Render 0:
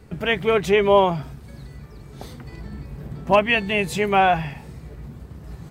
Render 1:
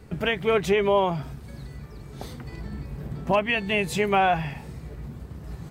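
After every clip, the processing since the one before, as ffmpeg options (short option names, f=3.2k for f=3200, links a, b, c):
-af "alimiter=limit=-12.5dB:level=0:latency=1:release=274"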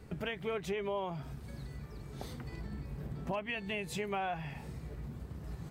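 -af "acompressor=threshold=-33dB:ratio=2.5,volume=-5dB"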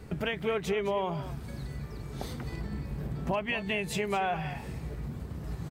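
-af "aecho=1:1:212:0.224,volume=6dB"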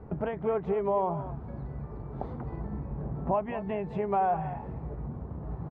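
-af "lowpass=f=910:t=q:w=1.7"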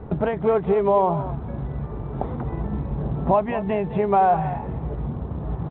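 -af "volume=9dB" -ar 8000 -c:a pcm_alaw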